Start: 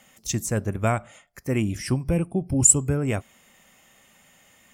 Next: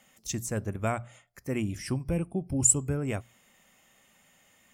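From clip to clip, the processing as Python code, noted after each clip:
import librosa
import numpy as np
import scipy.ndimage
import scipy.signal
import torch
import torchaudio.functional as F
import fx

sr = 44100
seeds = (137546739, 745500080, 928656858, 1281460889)

y = fx.hum_notches(x, sr, base_hz=60, count=2)
y = F.gain(torch.from_numpy(y), -6.0).numpy()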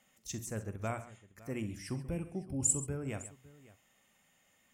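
y = fx.echo_multitap(x, sr, ms=(44, 64, 133, 557), db=(-13.5, -16.0, -15.5, -20.0))
y = F.gain(torch.from_numpy(y), -8.0).numpy()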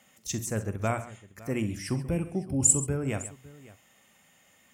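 y = scipy.signal.sosfilt(scipy.signal.butter(2, 49.0, 'highpass', fs=sr, output='sos'), x)
y = F.gain(torch.from_numpy(y), 8.5).numpy()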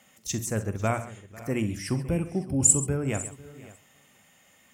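y = x + 10.0 ** (-21.0 / 20.0) * np.pad(x, (int(497 * sr / 1000.0), 0))[:len(x)]
y = F.gain(torch.from_numpy(y), 2.0).numpy()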